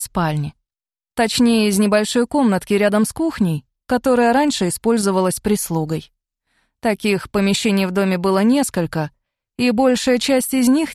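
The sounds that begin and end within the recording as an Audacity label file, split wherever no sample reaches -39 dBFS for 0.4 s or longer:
1.170000	6.060000	sound
6.830000	9.080000	sound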